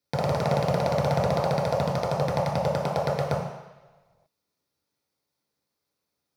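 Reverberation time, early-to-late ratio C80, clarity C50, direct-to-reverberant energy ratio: 1.1 s, 5.5 dB, 2.5 dB, -5.0 dB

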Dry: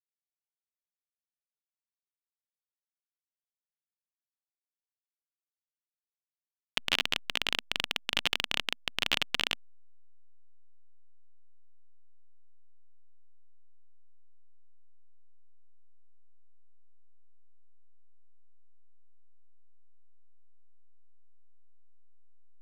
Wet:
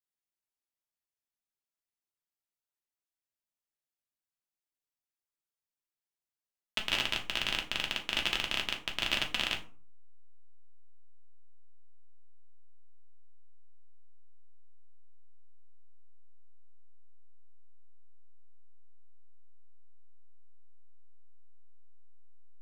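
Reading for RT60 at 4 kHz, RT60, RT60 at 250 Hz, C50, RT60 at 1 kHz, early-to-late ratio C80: 0.25 s, 0.40 s, 0.55 s, 12.0 dB, 0.40 s, 17.0 dB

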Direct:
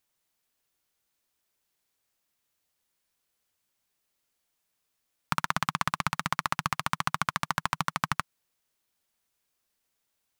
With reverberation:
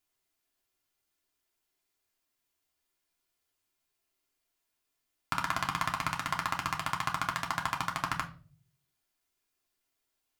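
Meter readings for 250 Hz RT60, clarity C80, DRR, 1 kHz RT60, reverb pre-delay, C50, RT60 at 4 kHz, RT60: 0.65 s, 19.0 dB, -0.5 dB, 0.35 s, 3 ms, 14.0 dB, 0.30 s, 0.40 s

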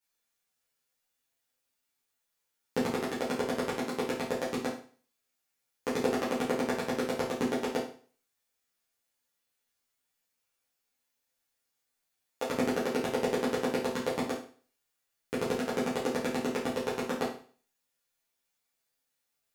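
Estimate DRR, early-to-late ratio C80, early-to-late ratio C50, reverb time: -9.5 dB, 10.5 dB, 6.0 dB, 0.40 s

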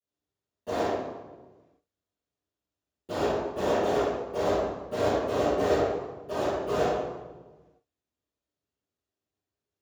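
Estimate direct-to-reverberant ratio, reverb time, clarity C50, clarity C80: -23.0 dB, 1.3 s, -4.0 dB, -1.0 dB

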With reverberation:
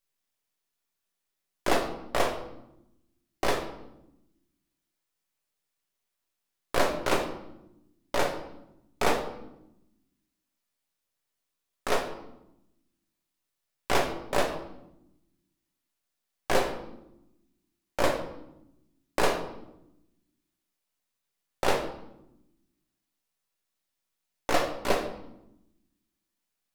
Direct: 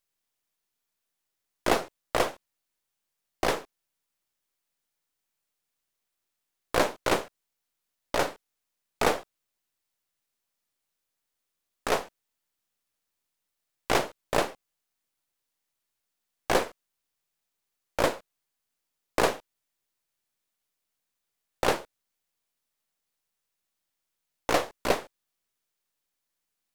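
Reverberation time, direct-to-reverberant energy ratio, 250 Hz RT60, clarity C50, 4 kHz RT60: 0.90 s, 2.0 dB, 1.4 s, 8.0 dB, 0.65 s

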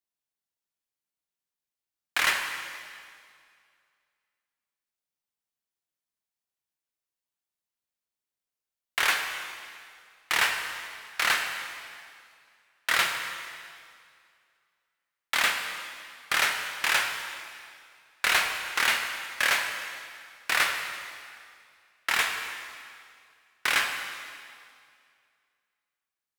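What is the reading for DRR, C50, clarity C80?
3.5 dB, 5.0 dB, 6.0 dB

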